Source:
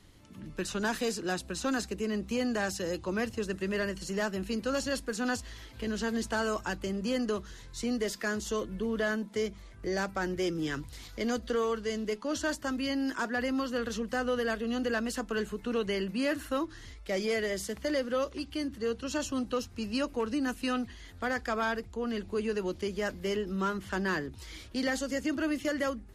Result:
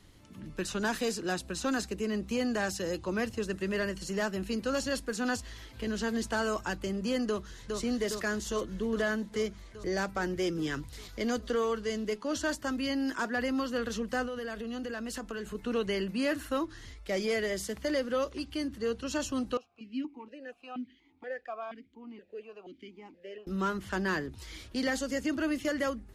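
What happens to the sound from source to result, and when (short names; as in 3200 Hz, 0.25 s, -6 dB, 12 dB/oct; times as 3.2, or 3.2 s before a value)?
7.27–7.78 echo throw 0.41 s, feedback 75%, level -4 dB
14.25–15.55 compressor, threshold -34 dBFS
19.57–23.47 vowel sequencer 4.2 Hz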